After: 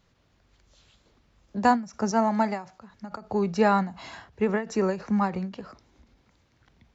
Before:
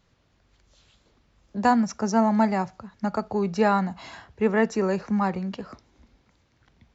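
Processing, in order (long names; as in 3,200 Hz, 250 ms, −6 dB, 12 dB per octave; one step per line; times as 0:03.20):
0:02.11–0:02.90: low-shelf EQ 180 Hz −11.5 dB
every ending faded ahead of time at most 160 dB per second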